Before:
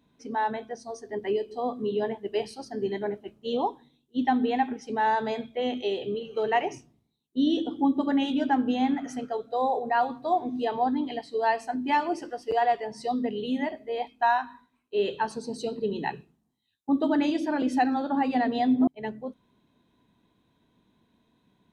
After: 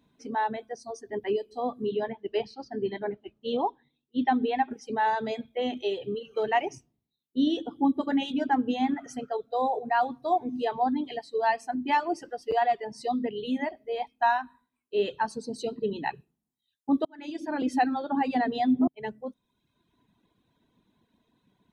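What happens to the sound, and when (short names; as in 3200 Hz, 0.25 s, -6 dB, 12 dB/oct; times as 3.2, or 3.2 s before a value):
1.85–4.71 LPF 4800 Hz 24 dB/oct
17.05–17.69 fade in
whole clip: reverb removal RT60 0.96 s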